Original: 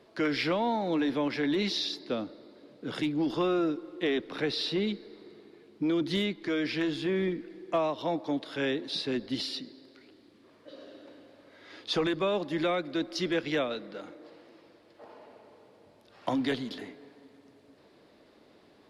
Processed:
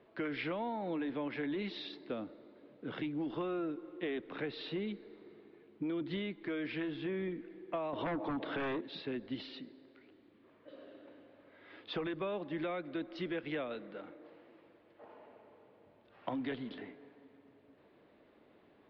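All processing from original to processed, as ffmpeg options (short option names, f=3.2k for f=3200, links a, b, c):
-filter_complex "[0:a]asettb=1/sr,asplit=3[a][b][c];[a]atrim=end=7.934[d];[b]atrim=start=7.93:end=8.81,asetpts=PTS-STARTPTS,afade=t=in:d=0.004:c=qsin,afade=t=out:st=0.876:d=0.004:c=qsin,highshelf=f=3.1k:g=-10.5,aeval=exprs='0.112*sin(PI/2*2.82*val(0)/0.112)':c=same,acompressor=threshold=-25dB:ratio=6:attack=3.2:release=140:knee=1:detection=peak[e];[c]atrim=start=8.806[f];[d][e]acrossfade=d=0.004:c1=hsin:c2=qsin[g];[g][f]acrossfade=d=0.004:c1=qsin:c2=hsin,lowpass=f=3.1k:w=0.5412,lowpass=f=3.1k:w=1.3066,acompressor=threshold=-30dB:ratio=3,volume=-5dB"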